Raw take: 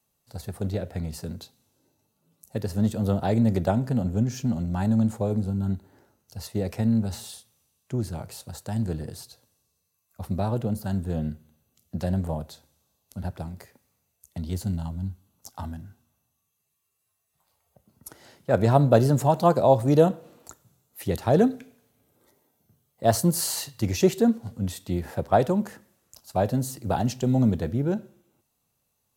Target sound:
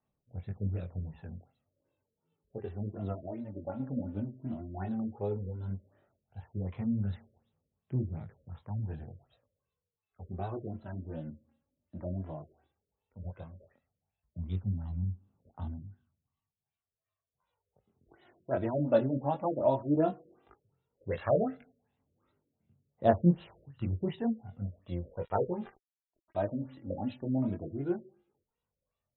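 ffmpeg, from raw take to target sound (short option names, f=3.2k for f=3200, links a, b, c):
-filter_complex "[0:a]asettb=1/sr,asplit=3[a][b][c];[a]atrim=end=3.124[d];[b]atrim=start=3.12:end=3.8,asetpts=PTS-STARTPTS,afade=t=in:d=0.004:c=qsin,afade=t=out:st=0.676:d=0.004:c=qsin,acompressor=threshold=-26dB:ratio=6[e];[c]atrim=start=3.796[f];[d][e]acrossfade=d=0.004:c1=hsin:c2=qsin[g];[g][f]acrossfade=d=0.004:c1=qsin:c2=hsin,asettb=1/sr,asplit=3[h][i][j];[h]atrim=end=21.074[k];[i]atrim=start=21.07:end=21.55,asetpts=PTS-STARTPTS,afade=t=in:d=0.004:c=qsin,afade=t=out:st=0.476:d=0.004:c=qsin,equalizer=f=1.9k:w=0.93:g=12.5[l];[j]atrim=start=21.546[m];[k][l]acrossfade=d=0.004:c1=hsin:c2=qsin[n];[n][m]acrossfade=d=0.004:c1=qsin:c2=hsin,flanger=delay=19.5:depth=3.5:speed=1.7,asettb=1/sr,asplit=3[o][p][q];[o]atrim=end=25.084[r];[p]atrim=start=25.08:end=26.74,asetpts=PTS-STARTPTS,afade=t=in:d=0.004:c=qsin,afade=t=out:st=1.656:d=0.004:c=qsin,aeval=exprs='val(0)*gte(abs(val(0)),0.0075)':c=same[s];[q]atrim=start=26.736[t];[r][s]acrossfade=d=0.004:c1=hsin:c2=qsin[u];[u][t]acrossfade=d=0.004:c1=qsin:c2=hsin,aphaser=in_gain=1:out_gain=1:delay=3.7:decay=0.58:speed=0.13:type=triangular,afftfilt=real='re*lt(b*sr/1024,600*pow(4100/600,0.5+0.5*sin(2*PI*2.7*pts/sr)))':imag='im*lt(b*sr/1024,600*pow(4100/600,0.5+0.5*sin(2*PI*2.7*pts/sr)))':win_size=1024:overlap=0.75,volume=-7.5dB"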